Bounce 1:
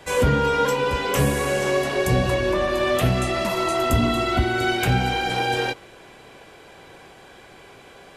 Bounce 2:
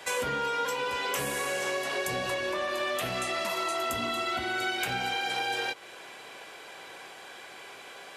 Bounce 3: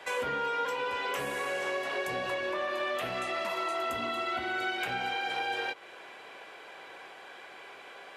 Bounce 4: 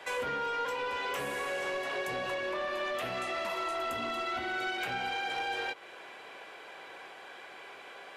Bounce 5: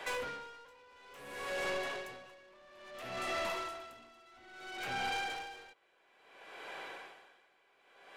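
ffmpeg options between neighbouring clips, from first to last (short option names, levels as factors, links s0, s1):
-af "highpass=f=950:p=1,acompressor=threshold=0.02:ratio=3,volume=1.5"
-af "bass=f=250:g=-6,treble=f=4000:g=-11,volume=0.891"
-af "asoftclip=type=tanh:threshold=0.0447"
-af "aeval=exprs='(tanh(56.2*val(0)+0.15)-tanh(0.15))/56.2':c=same,aeval=exprs='val(0)*pow(10,-25*(0.5-0.5*cos(2*PI*0.59*n/s))/20)':c=same,volume=1.41"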